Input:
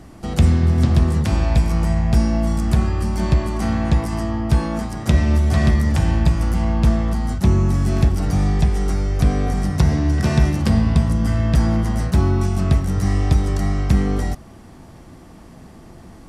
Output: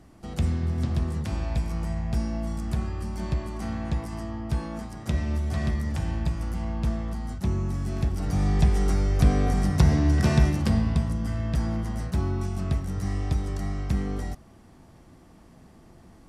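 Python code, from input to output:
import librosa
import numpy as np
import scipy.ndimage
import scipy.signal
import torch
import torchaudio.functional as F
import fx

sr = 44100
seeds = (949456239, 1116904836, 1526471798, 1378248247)

y = fx.gain(x, sr, db=fx.line((7.98, -11.0), (8.68, -3.0), (10.24, -3.0), (11.23, -10.0)))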